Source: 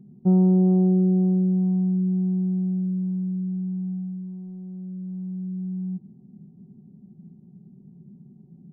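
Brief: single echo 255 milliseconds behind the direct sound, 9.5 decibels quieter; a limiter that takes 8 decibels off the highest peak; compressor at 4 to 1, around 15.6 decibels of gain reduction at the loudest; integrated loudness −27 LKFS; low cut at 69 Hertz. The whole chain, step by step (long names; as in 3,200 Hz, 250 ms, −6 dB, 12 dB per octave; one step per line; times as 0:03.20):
high-pass filter 69 Hz
downward compressor 4 to 1, threshold −35 dBFS
brickwall limiter −33.5 dBFS
single-tap delay 255 ms −9.5 dB
level +10.5 dB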